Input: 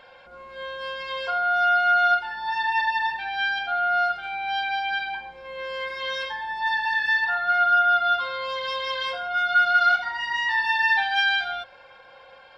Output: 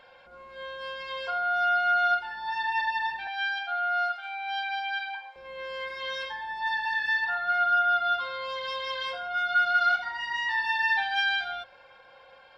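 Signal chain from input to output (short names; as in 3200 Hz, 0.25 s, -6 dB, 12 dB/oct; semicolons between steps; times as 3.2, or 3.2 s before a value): 3.27–5.36 HPF 650 Hz 24 dB/oct; gain -4.5 dB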